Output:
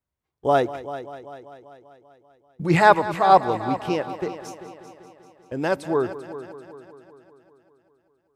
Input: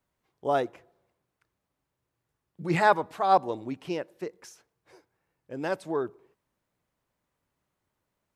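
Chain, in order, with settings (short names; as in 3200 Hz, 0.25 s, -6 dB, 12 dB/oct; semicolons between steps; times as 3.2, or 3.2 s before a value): gate -48 dBFS, range -16 dB; bell 67 Hz +12 dB 1.1 oct; on a send: multi-head echo 0.195 s, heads first and second, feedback 55%, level -16 dB; on the sum: gain +6.5 dB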